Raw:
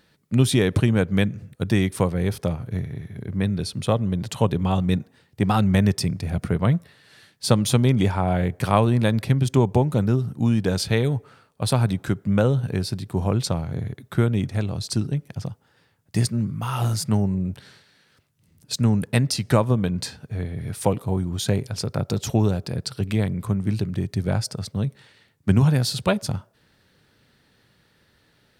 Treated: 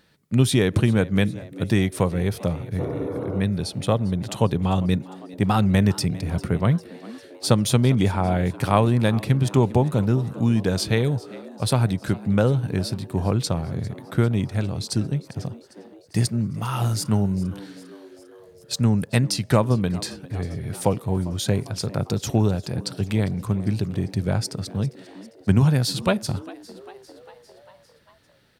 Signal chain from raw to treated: spectral repair 2.82–3.39, 220–1500 Hz after; frequency-shifting echo 0.4 s, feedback 62%, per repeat +89 Hz, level -20 dB

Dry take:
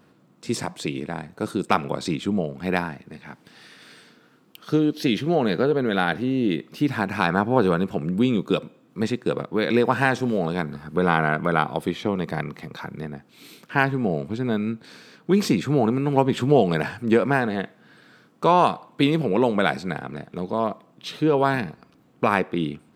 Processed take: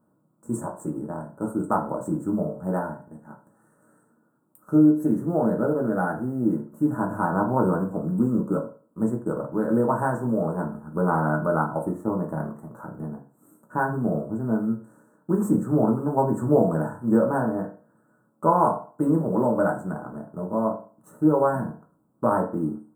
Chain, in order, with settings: G.711 law mismatch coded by A; elliptic band-stop 1300–8000 Hz, stop band 40 dB; reverb RT60 0.40 s, pre-delay 3 ms, DRR -0.5 dB; gain -4 dB

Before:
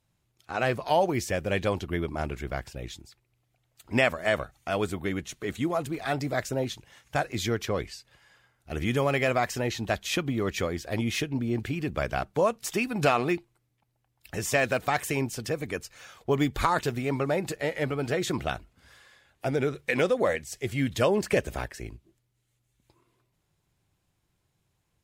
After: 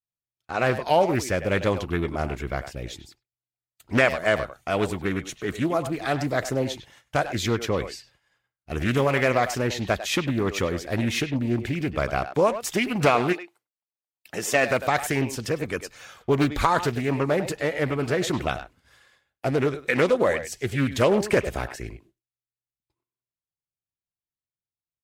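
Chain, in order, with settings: speakerphone echo 0.1 s, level -10 dB; expander -49 dBFS; 13.32–14.69 HPF 510 Hz -> 160 Hz 12 dB/oct; Doppler distortion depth 0.36 ms; gain +3.5 dB

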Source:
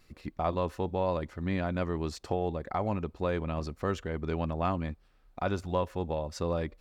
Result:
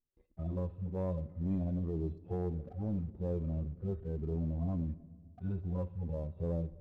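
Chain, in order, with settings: median-filter separation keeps harmonic; Bessel low-pass 3900 Hz; gate with hold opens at -52 dBFS; EQ curve 190 Hz 0 dB, 430 Hz -4 dB, 1600 Hz -21 dB; sample leveller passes 1; on a send: reverb RT60 1.7 s, pre-delay 15 ms, DRR 18 dB; on the sum: gain -3 dB

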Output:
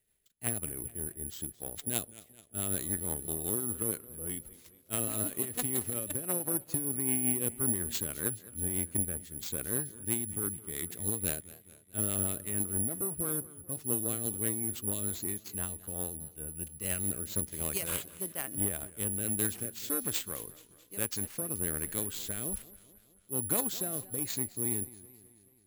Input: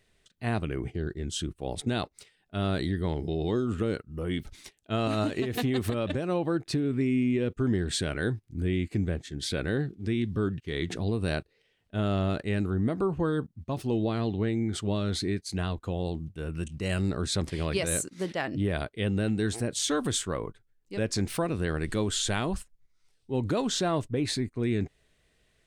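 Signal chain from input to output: rotary speaker horn 6 Hz, later 1.2 Hz, at 15.64; careless resampling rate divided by 4×, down none, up zero stuff; added harmonics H 3 -12 dB, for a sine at -3.5 dBFS; warbling echo 0.215 s, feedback 58%, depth 145 cents, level -18.5 dB

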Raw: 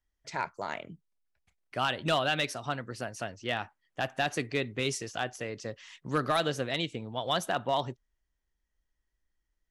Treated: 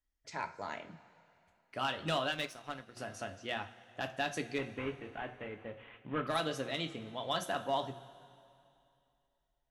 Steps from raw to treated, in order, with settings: 4.58–6.27 CVSD 16 kbps; two-slope reverb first 0.27 s, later 2.7 s, from -18 dB, DRR 5 dB; 2.32–2.97 power-law curve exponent 1.4; gain -6.5 dB

